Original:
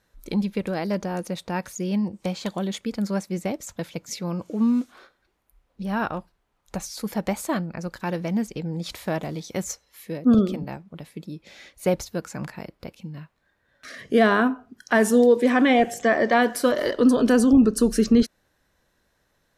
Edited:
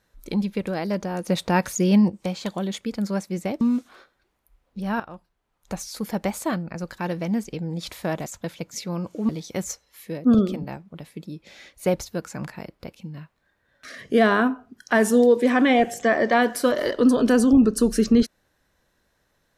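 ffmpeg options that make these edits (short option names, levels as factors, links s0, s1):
-filter_complex "[0:a]asplit=7[s0][s1][s2][s3][s4][s5][s6];[s0]atrim=end=1.282[s7];[s1]atrim=start=1.278:end=2.102,asetpts=PTS-STARTPTS,volume=2.37[s8];[s2]atrim=start=2.098:end=3.612[s9];[s3]atrim=start=4.638:end=6.03,asetpts=PTS-STARTPTS,afade=t=out:st=1.388:d=0.004:c=hsin:silence=0.199526[s10];[s4]atrim=start=6.03:end=9.292,asetpts=PTS-STARTPTS,afade=t=in:d=0.73:silence=0.199526[s11];[s5]atrim=start=3.608:end=4.642[s12];[s6]atrim=start=9.288[s13];[s7][s8]acrossfade=d=0.004:c1=hsin:c2=hsin[s14];[s14][s9]acrossfade=d=0.004:c1=hsin:c2=hsin[s15];[s10][s11]concat=n=2:v=0:a=1[s16];[s15][s16]acrossfade=d=0.004:c1=hsin:c2=hsin[s17];[s17][s12]acrossfade=d=0.004:c1=hsin:c2=hsin[s18];[s18][s13]acrossfade=d=0.004:c1=hsin:c2=hsin"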